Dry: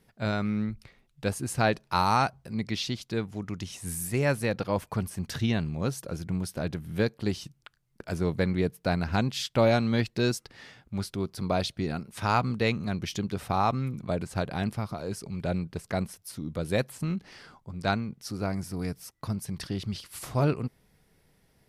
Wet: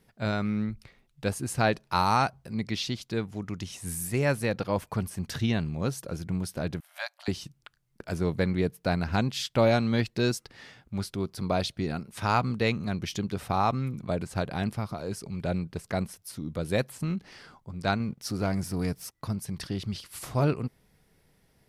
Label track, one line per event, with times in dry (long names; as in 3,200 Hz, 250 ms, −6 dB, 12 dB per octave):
6.800000	7.280000	linear-phase brick-wall high-pass 570 Hz
18.000000	19.150000	leveller curve on the samples passes 1